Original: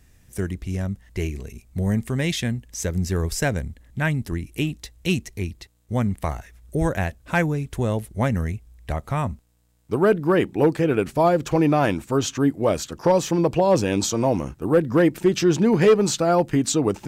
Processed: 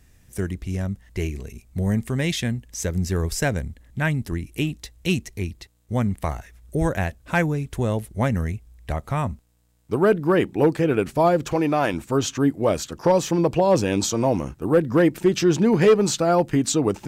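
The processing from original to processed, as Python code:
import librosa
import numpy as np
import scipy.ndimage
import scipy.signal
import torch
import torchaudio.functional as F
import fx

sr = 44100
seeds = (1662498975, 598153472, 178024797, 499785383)

y = fx.low_shelf(x, sr, hz=220.0, db=-9.5, at=(11.53, 11.94))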